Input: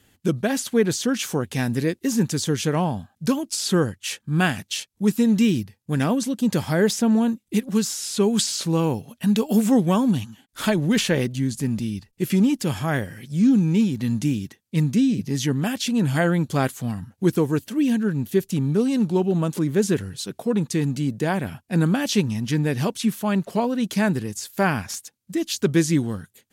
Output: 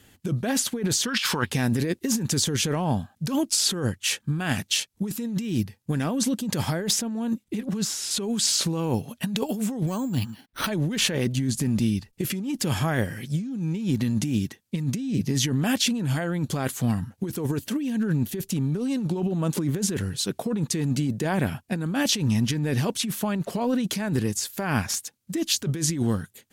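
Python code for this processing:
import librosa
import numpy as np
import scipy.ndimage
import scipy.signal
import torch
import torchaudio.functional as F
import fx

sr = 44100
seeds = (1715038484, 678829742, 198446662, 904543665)

y = fx.spec_box(x, sr, start_s=1.06, length_s=0.44, low_hz=860.0, high_hz=5500.0, gain_db=12)
y = fx.high_shelf(y, sr, hz=4700.0, db=-7.5, at=(7.44, 8.11))
y = fx.resample_bad(y, sr, factor=6, down='filtered', up='hold', at=(9.87, 10.68))
y = fx.over_compress(y, sr, threshold_db=-25.0, ratio=-1.0)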